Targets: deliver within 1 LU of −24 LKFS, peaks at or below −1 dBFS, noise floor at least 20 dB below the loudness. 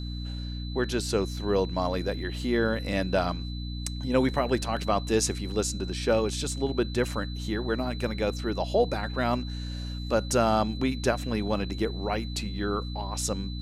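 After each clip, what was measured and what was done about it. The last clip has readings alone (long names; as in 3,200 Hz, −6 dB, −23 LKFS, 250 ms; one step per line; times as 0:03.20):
mains hum 60 Hz; hum harmonics up to 300 Hz; level of the hum −32 dBFS; interfering tone 4,000 Hz; level of the tone −43 dBFS; integrated loudness −28.5 LKFS; sample peak −11.0 dBFS; target loudness −24.0 LKFS
→ hum removal 60 Hz, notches 5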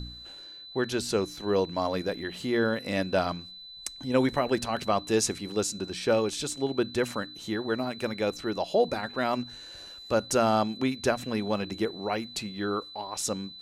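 mains hum none found; interfering tone 4,000 Hz; level of the tone −43 dBFS
→ notch filter 4,000 Hz, Q 30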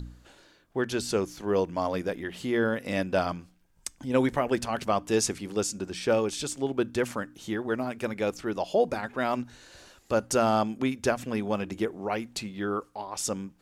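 interfering tone none found; integrated loudness −29.0 LKFS; sample peak −12.0 dBFS; target loudness −24.0 LKFS
→ level +5 dB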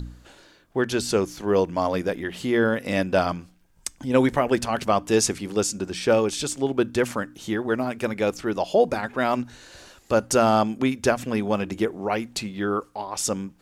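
integrated loudness −24.0 LKFS; sample peak −7.0 dBFS; background noise floor −57 dBFS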